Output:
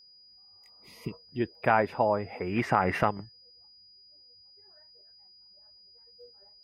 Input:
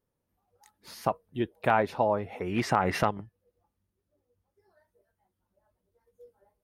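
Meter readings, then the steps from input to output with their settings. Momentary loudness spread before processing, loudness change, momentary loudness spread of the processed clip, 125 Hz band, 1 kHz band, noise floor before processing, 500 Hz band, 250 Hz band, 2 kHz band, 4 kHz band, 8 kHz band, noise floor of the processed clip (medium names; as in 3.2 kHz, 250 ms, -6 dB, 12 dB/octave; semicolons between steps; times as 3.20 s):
8 LU, 0.0 dB, 17 LU, 0.0 dB, 0.0 dB, -83 dBFS, 0.0 dB, 0.0 dB, +1.5 dB, -1.5 dB, no reading, -57 dBFS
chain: resonant high shelf 3.1 kHz -8.5 dB, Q 1.5; spectral replace 0.46–1.11 s, 440–1900 Hz both; whistle 4.9 kHz -54 dBFS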